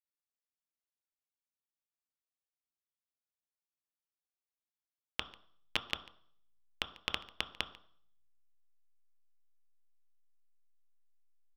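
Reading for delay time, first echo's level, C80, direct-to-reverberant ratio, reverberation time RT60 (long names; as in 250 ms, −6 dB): 144 ms, −22.5 dB, 16.0 dB, 7.0 dB, 0.60 s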